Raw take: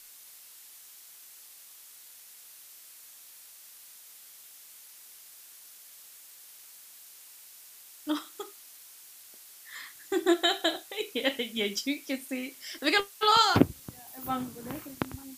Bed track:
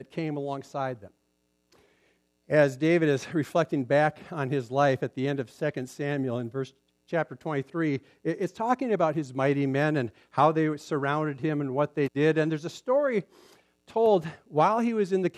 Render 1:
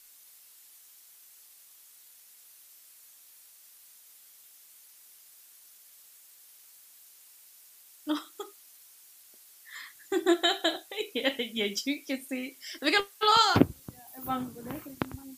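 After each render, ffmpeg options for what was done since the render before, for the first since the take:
-af "afftdn=nr=6:nf=-52"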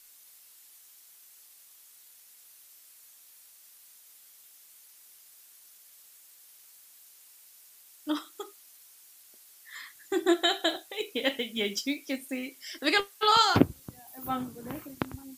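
-filter_complex "[0:a]asettb=1/sr,asplit=3[a][b][c];[a]atrim=end=10.694[d];[b]atrim=start=10.69:end=12.5,asetpts=PTS-STARTPTS,afade=t=in:d=0.004:c=qsin,afade=t=out:st=1.806:d=0.004:c=qsin,acrusher=bits=7:mode=log:mix=0:aa=0.000001[e];[c]atrim=start=12.496[f];[d][e]acrossfade=d=0.004:c1=hsin:c2=qsin[g];[g][f]acrossfade=d=0.004:c1=qsin:c2=hsin"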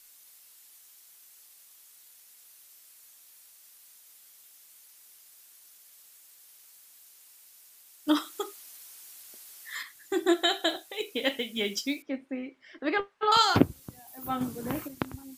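-filter_complex "[0:a]asettb=1/sr,asplit=3[a][b][c];[a]atrim=end=8.084[d];[b]atrim=start=8.08:end=9.83,asetpts=PTS-STARTPTS,afade=t=in:d=0.004:c=qsin,afade=t=out:st=1.746:d=0.004:c=qsin,acontrast=58[e];[c]atrim=start=9.826[f];[d][e]acrossfade=d=0.004:c1=hsin:c2=qsin[g];[g][f]acrossfade=d=0.004:c1=qsin:c2=hsin,asettb=1/sr,asplit=3[h][i][j];[h]atrim=end=12.024[k];[i]atrim=start=12.02:end=13.32,asetpts=PTS-STARTPTS,afade=t=in:d=0.004:c=qsin,afade=t=out:st=1.296:d=0.004:c=qsin,lowpass=1.6k[l];[j]atrim=start=13.316[m];[k][l]acrossfade=d=0.004:c1=hsin:c2=qsin[n];[n][m]acrossfade=d=0.004:c1=qsin:c2=hsin,asplit=3[o][p][q];[o]atrim=end=14.412[r];[p]atrim=start=14.408:end=14.882,asetpts=PTS-STARTPTS,volume=6dB[s];[q]atrim=start=14.878[t];[r][s]acrossfade=d=0.004:c1=hsin:c2=hsin[u];[u][t]acrossfade=d=0.004:c1=hsin:c2=hsin"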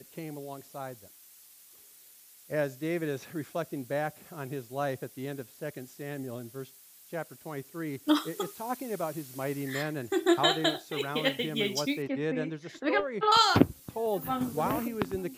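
-filter_complex "[1:a]volume=-9dB[a];[0:a][a]amix=inputs=2:normalize=0"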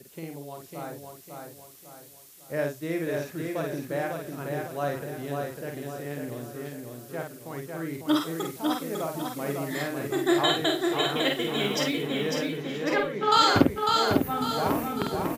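-filter_complex "[0:a]asplit=2[a][b];[b]adelay=49,volume=-4dB[c];[a][c]amix=inputs=2:normalize=0,asplit=2[d][e];[e]aecho=0:1:550|1100|1650|2200|2750:0.631|0.271|0.117|0.0502|0.0216[f];[d][f]amix=inputs=2:normalize=0"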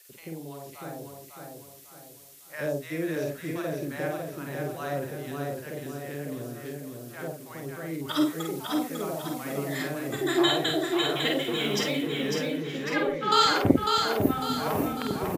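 -filter_complex "[0:a]acrossover=split=830[a][b];[a]adelay=90[c];[c][b]amix=inputs=2:normalize=0"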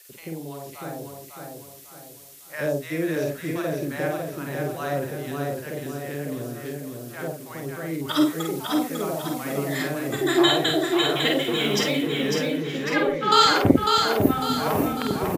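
-af "volume=4.5dB,alimiter=limit=-2dB:level=0:latency=1"

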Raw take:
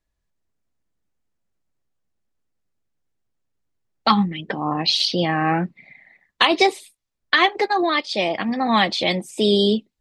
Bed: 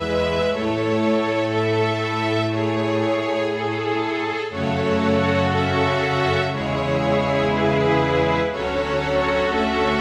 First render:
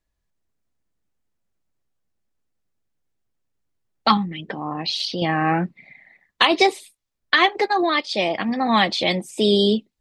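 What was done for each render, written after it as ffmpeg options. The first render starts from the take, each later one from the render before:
-filter_complex "[0:a]asettb=1/sr,asplit=3[a][b][c];[a]atrim=end=4.174[d];[b]atrim=start=4.17:end=5.22,asetpts=PTS-STARTPTS,afade=t=in:d=0.004:c=qsin,afade=t=out:st=1.046:d=0.004:c=qsin,acompressor=threshold=-31dB:ratio=1.5:attack=3.2:release=140:knee=1:detection=peak[e];[c]atrim=start=5.216[f];[d][e]acrossfade=d=0.004:c1=hsin:c2=qsin[g];[g][f]acrossfade=d=0.004:c1=qsin:c2=hsin"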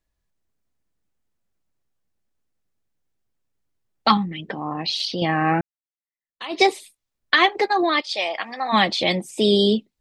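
-filter_complex "[0:a]asplit=3[a][b][c];[a]afade=t=out:st=8.01:d=0.02[d];[b]highpass=700,afade=t=in:st=8.01:d=0.02,afade=t=out:st=8.72:d=0.02[e];[c]afade=t=in:st=8.72:d=0.02[f];[d][e][f]amix=inputs=3:normalize=0,asplit=2[g][h];[g]atrim=end=5.61,asetpts=PTS-STARTPTS,afade=t=out:st=5.606:d=0.004:c=hsin[i];[h]atrim=start=5.61,asetpts=PTS-STARTPTS,afade=t=in:d=1.01:c=exp[j];[i][j]concat=n=2:v=0:a=1"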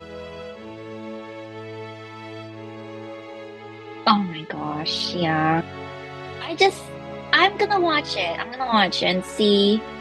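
-filter_complex "[1:a]volume=-15.5dB[a];[0:a][a]amix=inputs=2:normalize=0"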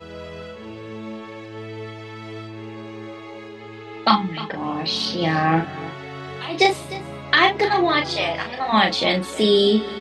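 -filter_complex "[0:a]asplit=2[a][b];[b]adelay=37,volume=-5.5dB[c];[a][c]amix=inputs=2:normalize=0,aecho=1:1:303:0.15"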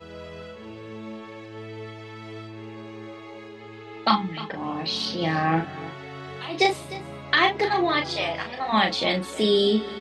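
-af "volume=-4dB"

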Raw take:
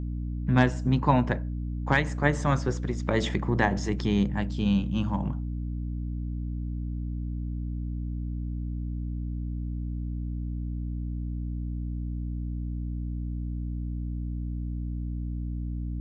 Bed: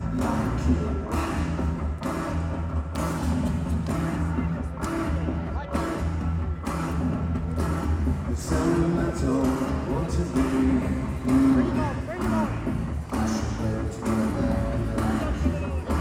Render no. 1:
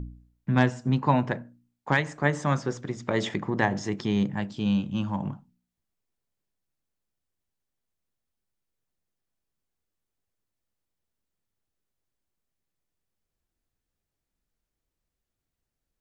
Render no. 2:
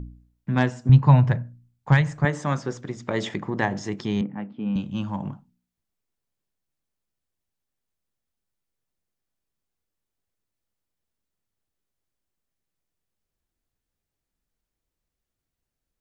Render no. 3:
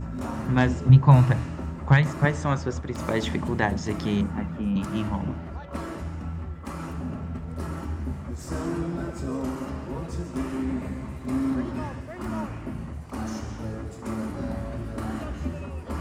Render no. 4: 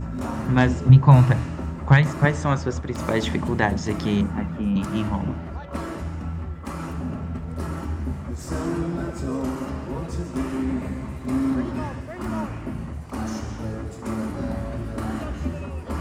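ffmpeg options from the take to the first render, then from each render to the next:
-af "bandreject=f=60:t=h:w=4,bandreject=f=120:t=h:w=4,bandreject=f=180:t=h:w=4,bandreject=f=240:t=h:w=4,bandreject=f=300:t=h:w=4"
-filter_complex "[0:a]asettb=1/sr,asplit=3[a][b][c];[a]atrim=end=0.894[d];[b]atrim=start=0.89:end=2.25,asetpts=PTS-STARTPTS,afade=t=in:d=0.004:c=qsin,afade=t=out:st=1.356:d=0.004:c=qsin,lowshelf=f=180:t=q:w=1.5:g=12[e];[c]atrim=start=2.246[f];[d][e]acrossfade=d=0.004:c1=hsin:c2=qsin[g];[g][f]acrossfade=d=0.004:c1=qsin:c2=hsin,asettb=1/sr,asplit=3[h][i][j];[h]atrim=end=4.214[k];[i]atrim=start=4.21:end=4.76,asetpts=PTS-STARTPTS,afade=t=in:d=0.004:c=qsin,afade=t=out:st=0.546:d=0.004:c=qsin,highpass=230,equalizer=f=240:t=q:w=4:g=8,equalizer=f=370:t=q:w=4:g=-5,equalizer=f=620:t=q:w=4:g=-5,equalizer=f=1k:t=q:w=4:g=-5,equalizer=f=1.7k:t=q:w=4:g=-9,lowpass=f=2.1k:w=0.5412,lowpass=f=2.1k:w=1.3066[l];[j]atrim=start=4.756[m];[k][l]acrossfade=d=0.004:c1=hsin:c2=qsin[n];[n][m]acrossfade=d=0.004:c1=qsin:c2=hsin"
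-filter_complex "[1:a]volume=-6.5dB[a];[0:a][a]amix=inputs=2:normalize=0"
-af "volume=3dB,alimiter=limit=-3dB:level=0:latency=1"

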